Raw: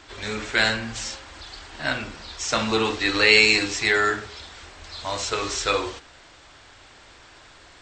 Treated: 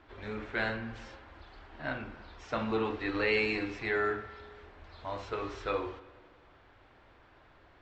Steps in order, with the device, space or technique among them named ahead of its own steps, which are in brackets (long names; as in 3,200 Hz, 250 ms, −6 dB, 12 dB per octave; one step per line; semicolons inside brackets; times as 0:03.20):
phone in a pocket (low-pass filter 3,100 Hz 12 dB per octave; high-shelf EQ 2,000 Hz −11.5 dB)
spring reverb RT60 1.7 s, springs 43/60 ms, chirp 30 ms, DRR 15 dB
level −7 dB